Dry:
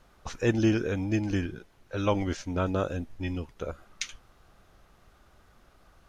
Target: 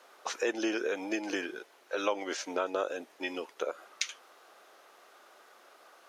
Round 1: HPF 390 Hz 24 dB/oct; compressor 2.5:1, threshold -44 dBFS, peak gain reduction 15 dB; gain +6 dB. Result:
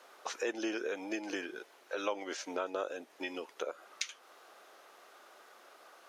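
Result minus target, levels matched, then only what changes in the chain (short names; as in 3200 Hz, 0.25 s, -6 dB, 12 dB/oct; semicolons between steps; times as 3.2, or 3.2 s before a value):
compressor: peak gain reduction +4.5 dB
change: compressor 2.5:1, threshold -36.5 dBFS, peak gain reduction 10.5 dB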